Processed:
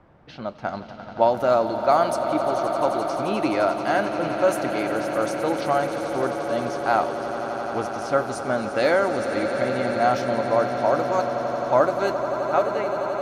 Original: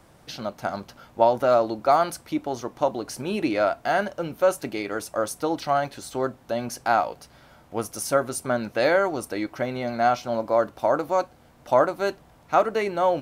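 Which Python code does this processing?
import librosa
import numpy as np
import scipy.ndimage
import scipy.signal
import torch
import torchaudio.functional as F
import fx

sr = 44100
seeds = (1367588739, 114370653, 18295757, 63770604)

y = fx.fade_out_tail(x, sr, length_s=0.92)
y = fx.env_lowpass(y, sr, base_hz=1800.0, full_db=-18.0)
y = fx.echo_swell(y, sr, ms=87, loudest=8, wet_db=-13.5)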